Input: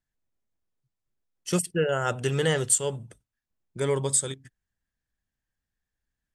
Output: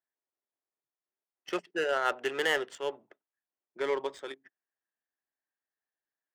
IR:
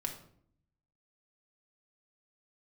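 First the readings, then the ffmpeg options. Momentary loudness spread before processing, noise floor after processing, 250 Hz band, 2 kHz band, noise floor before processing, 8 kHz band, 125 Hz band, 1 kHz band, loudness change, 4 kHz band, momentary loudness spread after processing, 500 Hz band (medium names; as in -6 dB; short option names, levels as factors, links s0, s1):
15 LU, under -85 dBFS, -10.0 dB, +1.5 dB, under -85 dBFS, -24.0 dB, -29.0 dB, 0.0 dB, -6.0 dB, -3.0 dB, 13 LU, -4.5 dB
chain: -af "highpass=f=370:w=0.5412,highpass=f=370:w=1.3066,equalizer=f=490:t=q:w=4:g=-7,equalizer=f=1900:t=q:w=4:g=4,equalizer=f=4300:t=q:w=4:g=-7,lowpass=f=5300:w=0.5412,lowpass=f=5300:w=1.3066,adynamicsmooth=sensitivity=5.5:basefreq=1600"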